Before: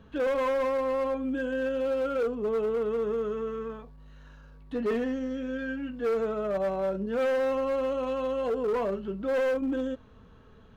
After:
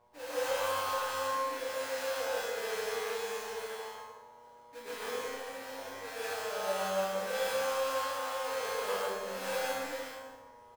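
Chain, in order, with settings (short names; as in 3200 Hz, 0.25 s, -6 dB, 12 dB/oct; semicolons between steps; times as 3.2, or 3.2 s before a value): sample-rate reducer 2100 Hz, jitter 20%; buzz 120 Hz, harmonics 9, -49 dBFS -2 dB/oct; resonant low shelf 400 Hz -10 dB, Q 1.5; resonator 97 Hz, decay 0.73 s, harmonics all, mix 90%; reverse bouncing-ball echo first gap 30 ms, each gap 1.25×, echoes 5; plate-style reverb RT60 1.2 s, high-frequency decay 0.55×, pre-delay 0.115 s, DRR -8.5 dB; gain -3.5 dB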